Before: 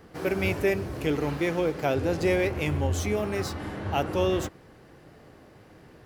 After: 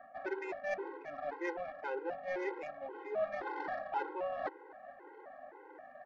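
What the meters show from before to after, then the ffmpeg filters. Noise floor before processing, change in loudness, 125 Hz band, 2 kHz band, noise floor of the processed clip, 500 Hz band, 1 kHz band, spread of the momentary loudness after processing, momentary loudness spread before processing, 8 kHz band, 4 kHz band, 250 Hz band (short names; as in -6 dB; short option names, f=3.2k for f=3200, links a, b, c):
-53 dBFS, -12.5 dB, under -35 dB, -10.0 dB, -56 dBFS, -11.5 dB, -5.5 dB, 15 LU, 5 LU, under -25 dB, -22.5 dB, -18.5 dB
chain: -af "areverse,acompressor=threshold=-35dB:ratio=10,areverse,highpass=f=470:w=0.5412,highpass=f=470:w=1.3066,equalizer=f=480:t=q:w=4:g=-8,equalizer=f=750:t=q:w=4:g=4,equalizer=f=1.2k:t=q:w=4:g=-4,equalizer=f=1.8k:t=q:w=4:g=6,lowpass=f=2.2k:w=0.5412,lowpass=f=2.2k:w=1.3066,aecho=1:1:894:0.0668,adynamicsmooth=sensitivity=3.5:basefreq=1k,afftfilt=real='re*gt(sin(2*PI*1.9*pts/sr)*(1-2*mod(floor(b*sr/1024/270),2)),0)':imag='im*gt(sin(2*PI*1.9*pts/sr)*(1-2*mod(floor(b*sr/1024/270),2)),0)':win_size=1024:overlap=0.75,volume=11.5dB"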